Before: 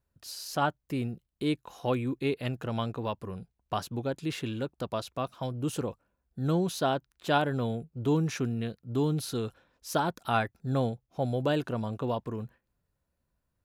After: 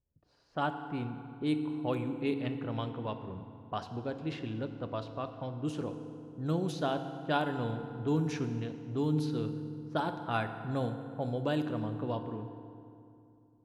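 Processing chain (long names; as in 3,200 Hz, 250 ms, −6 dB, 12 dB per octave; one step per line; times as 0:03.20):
low-pass that shuts in the quiet parts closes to 570 Hz, open at −23.5 dBFS
feedback delay network reverb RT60 2.6 s, low-frequency decay 1.3×, high-frequency decay 0.65×, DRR 7.5 dB
level −5 dB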